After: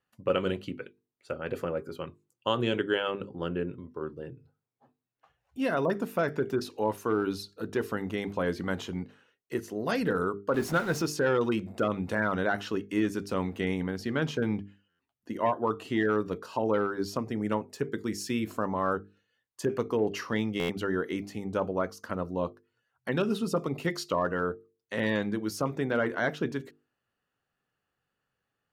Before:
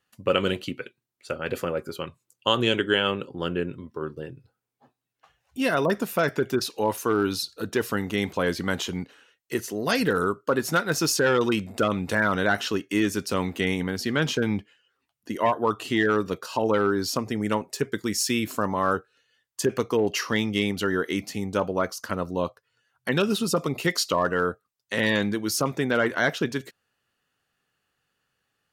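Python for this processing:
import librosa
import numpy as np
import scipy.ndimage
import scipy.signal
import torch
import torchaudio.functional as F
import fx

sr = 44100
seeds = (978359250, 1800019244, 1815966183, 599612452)

y = fx.zero_step(x, sr, step_db=-28.0, at=(10.54, 11.02))
y = fx.high_shelf(y, sr, hz=2200.0, db=-11.0)
y = fx.hum_notches(y, sr, base_hz=50, count=9)
y = fx.buffer_glitch(y, sr, at_s=(14.89, 20.59), block=512, repeats=8)
y = F.gain(torch.from_numpy(y), -3.0).numpy()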